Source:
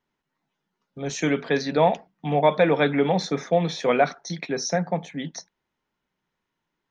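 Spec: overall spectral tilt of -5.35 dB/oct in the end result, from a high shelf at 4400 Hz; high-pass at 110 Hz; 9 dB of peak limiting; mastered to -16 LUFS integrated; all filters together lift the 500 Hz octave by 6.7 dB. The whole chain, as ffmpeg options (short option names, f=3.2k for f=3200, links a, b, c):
-af "highpass=110,equalizer=f=500:t=o:g=8,highshelf=f=4.4k:g=-7.5,volume=6dB,alimiter=limit=-4dB:level=0:latency=1"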